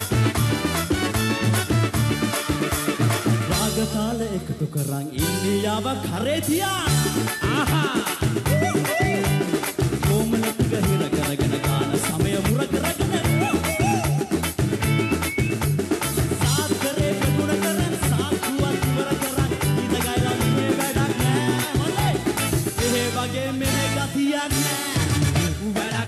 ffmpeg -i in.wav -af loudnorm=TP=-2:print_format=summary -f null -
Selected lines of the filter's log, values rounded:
Input Integrated:    -22.2 LUFS
Input True Peak:      -7.9 dBTP
Input LRA:             1.0 LU
Input Threshold:     -32.2 LUFS